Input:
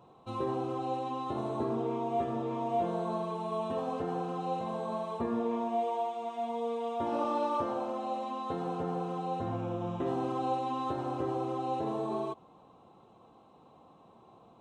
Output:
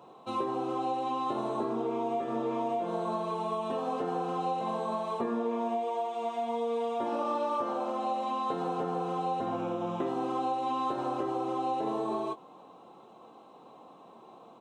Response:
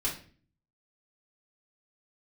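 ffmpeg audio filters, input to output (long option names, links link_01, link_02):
-filter_complex "[0:a]highpass=240,acompressor=threshold=-34dB:ratio=6,asplit=2[link_01][link_02];[link_02]adelay=22,volume=-11.5dB[link_03];[link_01][link_03]amix=inputs=2:normalize=0,volume=6dB"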